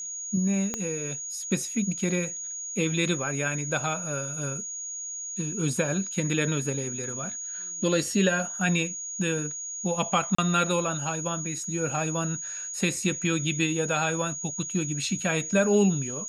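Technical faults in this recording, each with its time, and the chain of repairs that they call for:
whistle 6,700 Hz −33 dBFS
0:00.74: click −15 dBFS
0:10.35–0:10.38: drop-out 34 ms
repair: click removal
notch filter 6,700 Hz, Q 30
repair the gap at 0:10.35, 34 ms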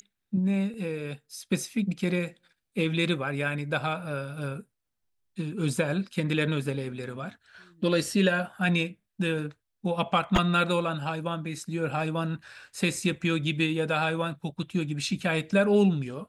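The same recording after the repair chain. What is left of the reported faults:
0:00.74: click

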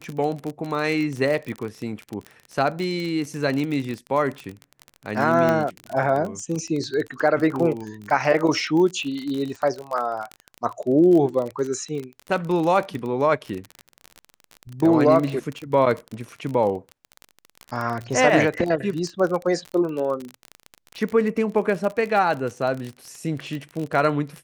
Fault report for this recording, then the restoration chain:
surface crackle 33 per second −26 dBFS
0:05.49: click −10 dBFS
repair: click removal

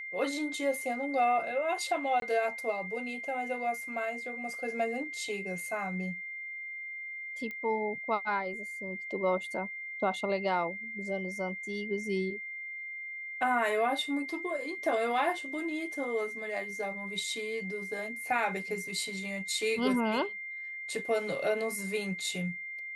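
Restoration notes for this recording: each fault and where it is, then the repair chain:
whistle 2,100 Hz −38 dBFS
0:02.20–0:02.22: drop-out 22 ms
0:07.51: click −27 dBFS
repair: click removal
notch filter 2,100 Hz, Q 30
repair the gap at 0:02.20, 22 ms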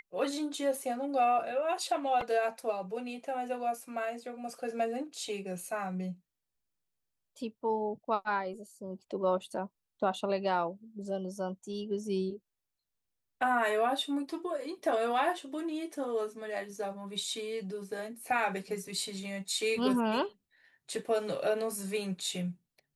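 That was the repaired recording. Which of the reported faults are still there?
none of them is left

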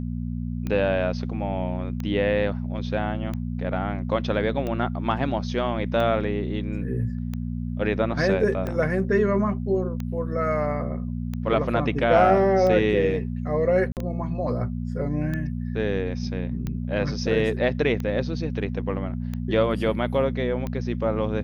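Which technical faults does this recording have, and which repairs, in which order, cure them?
mains hum 60 Hz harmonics 4 −29 dBFS
scratch tick 45 rpm −18 dBFS
0:13.92–0:13.97: drop-out 48 ms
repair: click removal
hum removal 60 Hz, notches 4
repair the gap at 0:13.92, 48 ms

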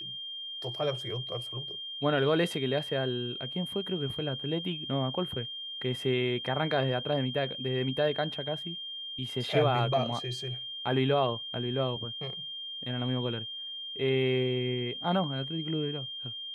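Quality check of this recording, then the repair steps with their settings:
whistle 3,200 Hz −37 dBFS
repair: notch filter 3,200 Hz, Q 30

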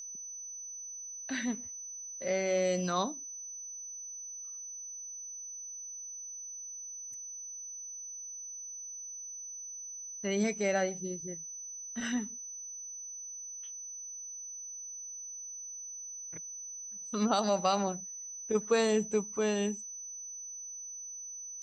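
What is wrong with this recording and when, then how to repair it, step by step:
whistle 6,000 Hz −41 dBFS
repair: notch filter 6,000 Hz, Q 30

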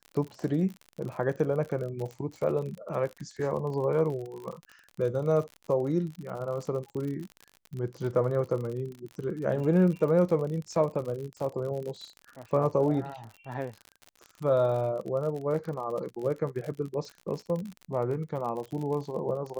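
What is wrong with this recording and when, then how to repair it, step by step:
surface crackle 54 per second −35 dBFS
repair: click removal

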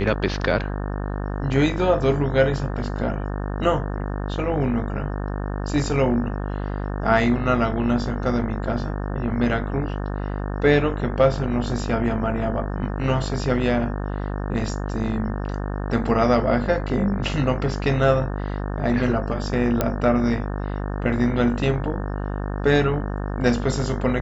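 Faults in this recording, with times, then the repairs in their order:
mains buzz 50 Hz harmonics 36 −27 dBFS
0:19.81: click −6 dBFS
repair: click removal
hum removal 50 Hz, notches 36

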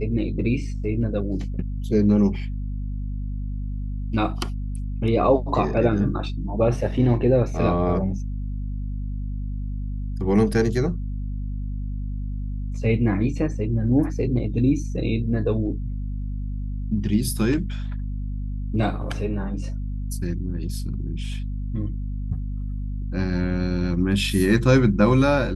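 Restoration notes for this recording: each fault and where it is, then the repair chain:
mains hum 50 Hz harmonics 5 −28 dBFS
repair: hum removal 50 Hz, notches 5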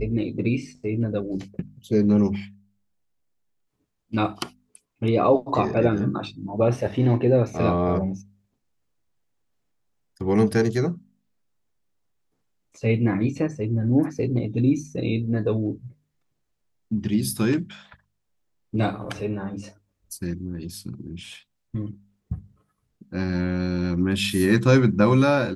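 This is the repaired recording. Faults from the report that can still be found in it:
none of them is left

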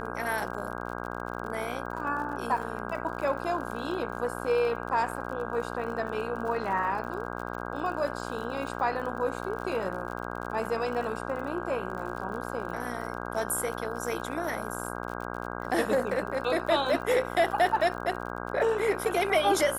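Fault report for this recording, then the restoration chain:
mains buzz 60 Hz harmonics 27 −36 dBFS
surface crackle 54 per second −37 dBFS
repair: click removal
hum removal 60 Hz, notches 27

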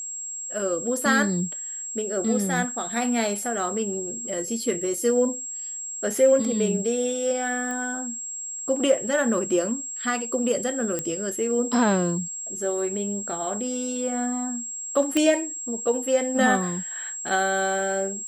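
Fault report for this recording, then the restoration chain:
whistle 7,600 Hz −31 dBFS
0:07.71: click −20 dBFS
0:10.99: click −13 dBFS
0:15.17: click −10 dBFS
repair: click removal
notch filter 7,600 Hz, Q 30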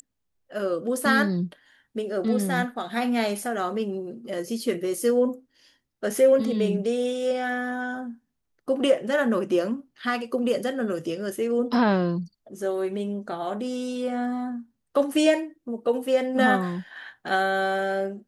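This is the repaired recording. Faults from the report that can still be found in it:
none of them is left

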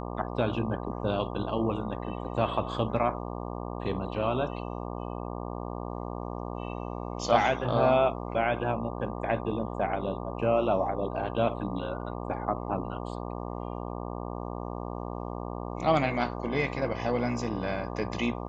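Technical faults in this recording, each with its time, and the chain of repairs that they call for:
mains buzz 60 Hz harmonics 20 −36 dBFS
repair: hum removal 60 Hz, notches 20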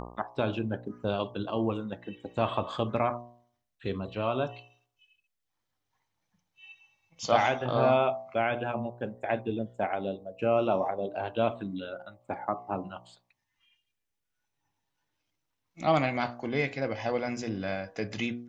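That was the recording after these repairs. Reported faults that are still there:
none of them is left

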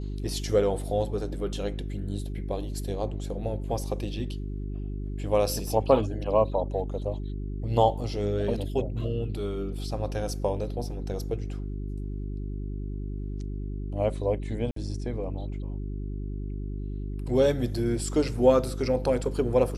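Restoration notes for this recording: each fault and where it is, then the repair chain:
mains hum 50 Hz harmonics 8 −33 dBFS
0:14.71–0:14.76: drop-out 53 ms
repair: hum removal 50 Hz, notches 8
repair the gap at 0:14.71, 53 ms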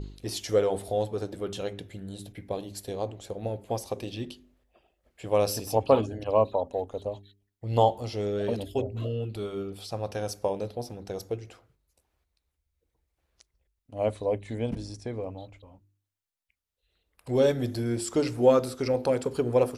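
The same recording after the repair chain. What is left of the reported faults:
none of them is left

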